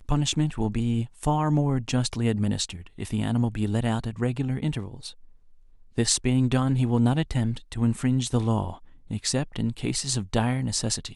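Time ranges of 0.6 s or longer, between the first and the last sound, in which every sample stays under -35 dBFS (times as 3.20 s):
5.10–5.98 s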